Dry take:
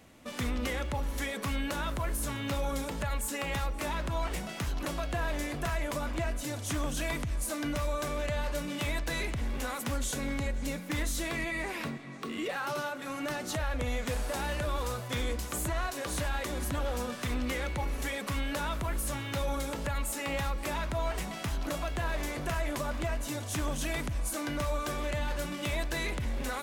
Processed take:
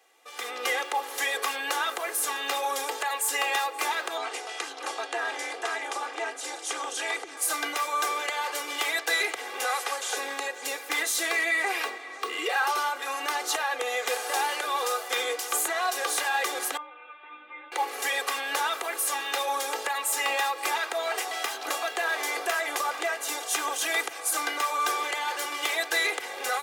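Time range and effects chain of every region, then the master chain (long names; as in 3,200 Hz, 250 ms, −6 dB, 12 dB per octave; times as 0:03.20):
0:04.17–0:07.37: low-pass filter 9,700 Hz 24 dB per octave + amplitude modulation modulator 230 Hz, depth 70%
0:09.64–0:10.17: linear delta modulator 64 kbit/s, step −44.5 dBFS + high-pass filter 350 Hz 24 dB per octave
0:16.77–0:17.72: linear delta modulator 16 kbit/s, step −38.5 dBFS + tuned comb filter 300 Hz, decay 0.29 s, mix 100%
whole clip: high-pass filter 490 Hz 24 dB per octave; comb filter 2.5 ms, depth 82%; automatic gain control gain up to 12 dB; level −5 dB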